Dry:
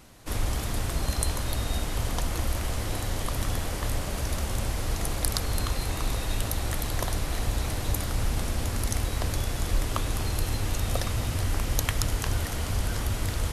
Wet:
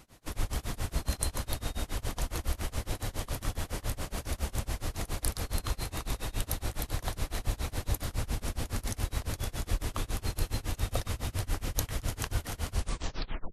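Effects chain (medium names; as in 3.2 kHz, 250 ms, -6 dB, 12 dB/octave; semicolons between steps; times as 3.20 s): tape stop on the ending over 0.81 s; tremolo 7.2 Hz, depth 97%; trim -1.5 dB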